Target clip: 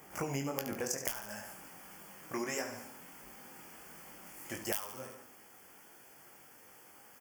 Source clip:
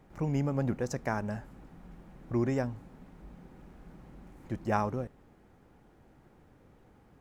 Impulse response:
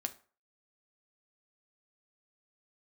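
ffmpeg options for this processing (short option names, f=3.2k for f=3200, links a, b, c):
-af "asetnsamples=n=441:p=0,asendcmd='1.11 highpass f 1500',highpass=f=580:p=1,aeval=exprs='(mod(14.1*val(0)+1,2)-1)/14.1':c=same,aemphasis=mode=production:type=75fm,aecho=1:1:71|142|213|284|355:0.316|0.139|0.0612|0.0269|0.0119,flanger=delay=19.5:depth=3:speed=1.5,asuperstop=centerf=3900:order=4:qfactor=3.7,flanger=delay=6.1:depth=6.9:regen=-67:speed=0.64:shape=triangular,acompressor=threshold=-50dB:ratio=8,volume=17dB"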